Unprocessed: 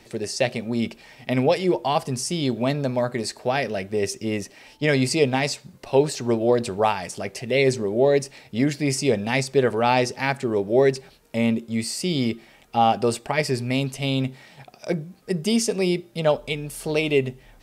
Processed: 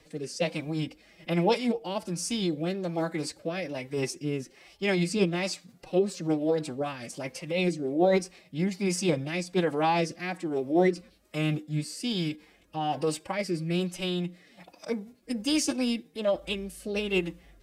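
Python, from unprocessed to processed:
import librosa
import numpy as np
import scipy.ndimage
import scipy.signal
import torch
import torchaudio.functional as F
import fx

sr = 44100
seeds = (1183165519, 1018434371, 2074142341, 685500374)

y = fx.pitch_keep_formants(x, sr, semitones=5.0)
y = fx.rotary(y, sr, hz=1.2)
y = y * 10.0 ** (-4.0 / 20.0)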